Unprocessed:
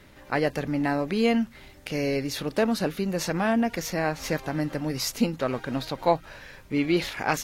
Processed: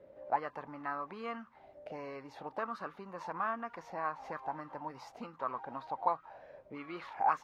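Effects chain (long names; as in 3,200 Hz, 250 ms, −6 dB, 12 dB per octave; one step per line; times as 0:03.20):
low-shelf EQ 200 Hz +10.5 dB
in parallel at −3 dB: downward compressor, threshold −33 dBFS, peak gain reduction 18.5 dB
on the sum: envelope filter 520–1,200 Hz, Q 8.8, up, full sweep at −16.5 dBFS
level +3.5 dB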